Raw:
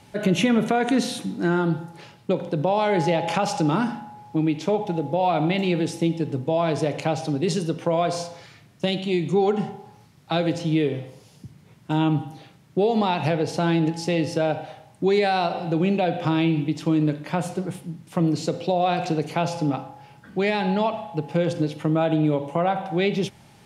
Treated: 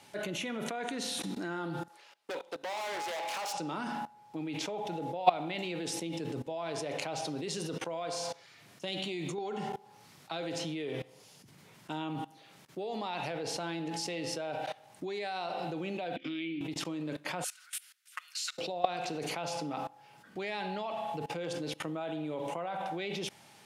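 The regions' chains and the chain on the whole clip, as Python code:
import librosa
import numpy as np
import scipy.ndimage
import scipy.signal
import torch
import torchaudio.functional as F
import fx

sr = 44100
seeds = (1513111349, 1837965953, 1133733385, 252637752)

y = fx.chain(x, sr, fx.highpass(hz=520.0, slope=12),
    fx.overload_stage(gain_db=30.0),
    fx.upward_expand(threshold_db=-50.0, expansion=1.5), at=(1.88, 3.54))
y = fx.chain(y, sr, fx.highpass(hz=100.0, slope=6),
    fx.quant_float(bits=8), at=(12.15, 12.86))
y = fx.chain(y, sr, fx.vowel_filter(vowel='i'),
    fx.band_squash(depth_pct=70), at=(16.16, 16.61))
y = fx.chain(y, sr, fx.ellip_highpass(hz=1400.0, order=4, stop_db=80),
    fx.high_shelf(hz=8800.0, db=8.0), at=(17.44, 18.58))
y = fx.highpass(y, sr, hz=520.0, slope=6)
y = fx.high_shelf(y, sr, hz=3200.0, db=2.0)
y = fx.level_steps(y, sr, step_db=21)
y = y * 10.0 ** (5.5 / 20.0)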